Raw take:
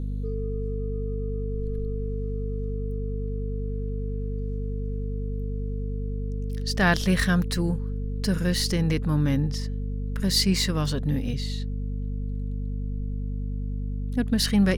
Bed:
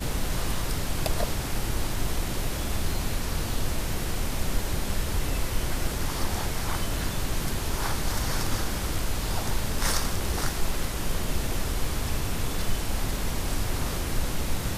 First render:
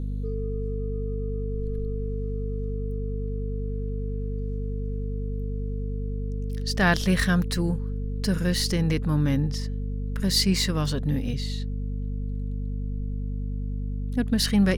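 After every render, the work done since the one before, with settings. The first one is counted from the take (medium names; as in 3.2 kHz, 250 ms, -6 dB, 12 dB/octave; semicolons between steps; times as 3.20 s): no audible change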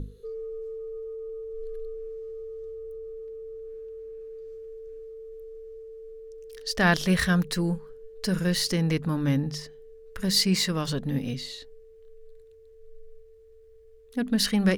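hum notches 50/100/150/200/250 Hz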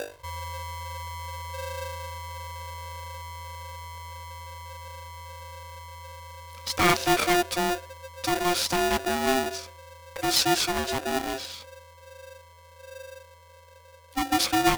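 polarity switched at an audio rate 530 Hz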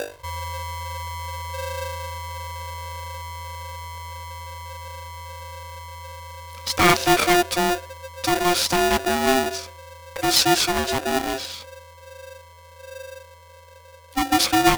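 trim +5 dB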